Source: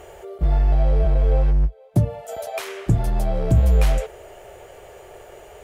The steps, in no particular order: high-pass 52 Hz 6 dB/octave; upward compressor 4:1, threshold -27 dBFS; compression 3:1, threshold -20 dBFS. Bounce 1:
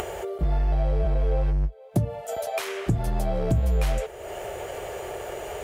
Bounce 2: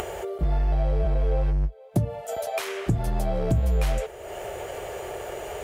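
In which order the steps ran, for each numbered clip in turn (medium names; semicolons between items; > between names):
high-pass > upward compressor > compression; upward compressor > high-pass > compression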